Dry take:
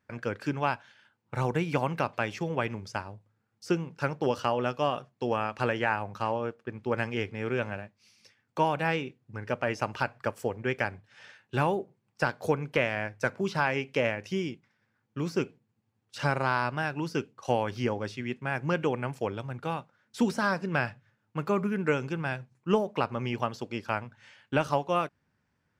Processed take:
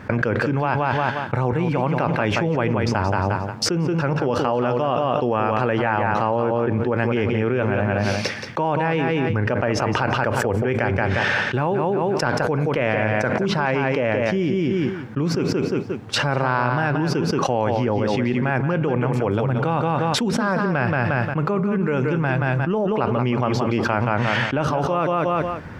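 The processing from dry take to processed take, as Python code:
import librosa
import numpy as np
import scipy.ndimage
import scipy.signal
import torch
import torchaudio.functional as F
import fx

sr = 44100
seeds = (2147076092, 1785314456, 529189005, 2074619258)

y = fx.lowpass(x, sr, hz=1400.0, slope=6)
y = fx.echo_feedback(y, sr, ms=177, feedback_pct=18, wet_db=-9.0)
y = fx.env_flatten(y, sr, amount_pct=100)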